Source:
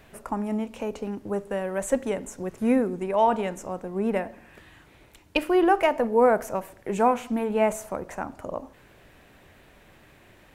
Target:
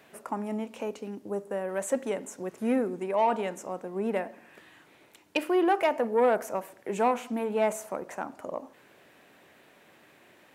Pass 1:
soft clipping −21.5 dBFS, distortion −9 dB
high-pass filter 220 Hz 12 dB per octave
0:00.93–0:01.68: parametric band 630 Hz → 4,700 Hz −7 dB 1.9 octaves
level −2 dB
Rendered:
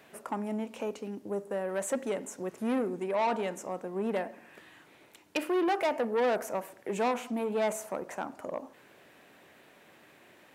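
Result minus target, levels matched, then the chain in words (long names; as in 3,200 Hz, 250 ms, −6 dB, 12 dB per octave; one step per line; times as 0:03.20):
soft clipping: distortion +9 dB
soft clipping −13.5 dBFS, distortion −18 dB
high-pass filter 220 Hz 12 dB per octave
0:00.93–0:01.68: parametric band 630 Hz → 4,700 Hz −7 dB 1.9 octaves
level −2 dB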